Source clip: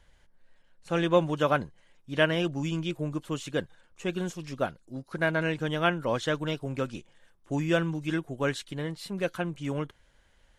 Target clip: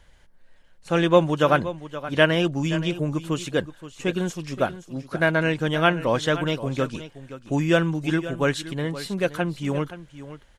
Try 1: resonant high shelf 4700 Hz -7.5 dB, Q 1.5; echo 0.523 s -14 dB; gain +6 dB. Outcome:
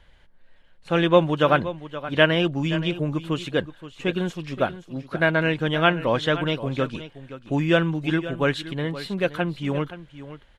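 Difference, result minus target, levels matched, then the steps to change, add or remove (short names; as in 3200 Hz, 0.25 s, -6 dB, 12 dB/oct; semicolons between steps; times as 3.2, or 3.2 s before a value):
8000 Hz band -9.5 dB
remove: resonant high shelf 4700 Hz -7.5 dB, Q 1.5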